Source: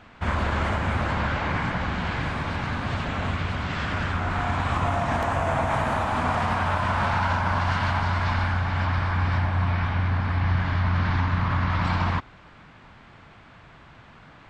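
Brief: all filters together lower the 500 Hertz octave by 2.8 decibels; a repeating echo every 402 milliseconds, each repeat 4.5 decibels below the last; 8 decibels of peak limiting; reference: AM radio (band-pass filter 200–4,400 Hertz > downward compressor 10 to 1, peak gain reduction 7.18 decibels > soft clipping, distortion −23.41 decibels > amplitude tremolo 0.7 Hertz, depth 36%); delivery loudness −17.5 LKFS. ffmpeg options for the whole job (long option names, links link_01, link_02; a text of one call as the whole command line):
ffmpeg -i in.wav -af "equalizer=frequency=500:width_type=o:gain=-4,alimiter=limit=-19.5dB:level=0:latency=1,highpass=200,lowpass=4400,aecho=1:1:402|804|1206|1608|2010|2412|2814|3216|3618:0.596|0.357|0.214|0.129|0.0772|0.0463|0.0278|0.0167|0.01,acompressor=threshold=-30dB:ratio=10,asoftclip=threshold=-24.5dB,tremolo=f=0.7:d=0.36,volume=19dB" out.wav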